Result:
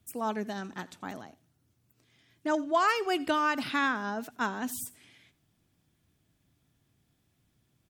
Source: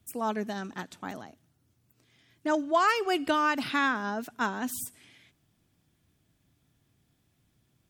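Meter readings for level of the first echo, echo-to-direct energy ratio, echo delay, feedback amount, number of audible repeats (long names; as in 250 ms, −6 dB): −21.5 dB, −21.5 dB, 85 ms, repeats not evenly spaced, 1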